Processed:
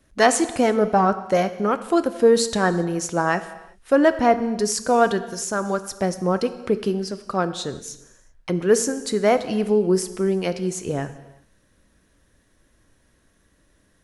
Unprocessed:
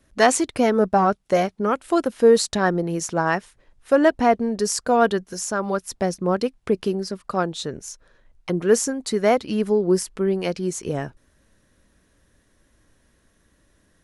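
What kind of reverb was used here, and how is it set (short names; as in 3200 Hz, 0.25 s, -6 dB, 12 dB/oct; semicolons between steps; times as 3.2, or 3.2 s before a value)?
non-linear reverb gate 0.41 s falling, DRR 11 dB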